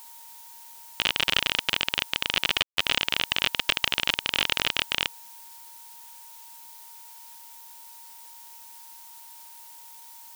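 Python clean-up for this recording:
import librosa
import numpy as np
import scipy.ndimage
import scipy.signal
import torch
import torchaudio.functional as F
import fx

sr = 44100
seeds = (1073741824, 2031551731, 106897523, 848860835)

y = fx.notch(x, sr, hz=930.0, q=30.0)
y = fx.fix_ambience(y, sr, seeds[0], print_start_s=9.64, print_end_s=10.14, start_s=2.63, end_s=2.77)
y = fx.noise_reduce(y, sr, print_start_s=9.64, print_end_s=10.14, reduce_db=26.0)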